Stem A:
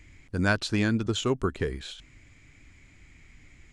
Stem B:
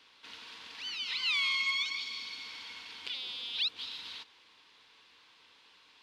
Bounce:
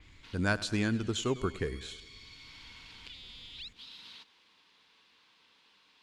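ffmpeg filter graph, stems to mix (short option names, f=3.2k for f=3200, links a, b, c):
-filter_complex "[0:a]volume=-5dB,asplit=3[a][b][c];[b]volume=-18dB[d];[1:a]equalizer=f=190:t=o:w=0.77:g=7,acrossover=split=240[e][f];[f]acompressor=threshold=-44dB:ratio=2.5[g];[e][g]amix=inputs=2:normalize=0,volume=-4dB[h];[c]apad=whole_len=265831[i];[h][i]sidechaincompress=threshold=-36dB:ratio=8:attack=16:release=1400[j];[d]aecho=0:1:101|202|303|404|505|606|707|808|909:1|0.58|0.336|0.195|0.113|0.0656|0.0381|0.0221|0.0128[k];[a][j][k]amix=inputs=3:normalize=0,adynamicequalizer=threshold=0.00355:dfrequency=5400:dqfactor=0.7:tfrequency=5400:tqfactor=0.7:attack=5:release=100:ratio=0.375:range=2:mode=boostabove:tftype=highshelf"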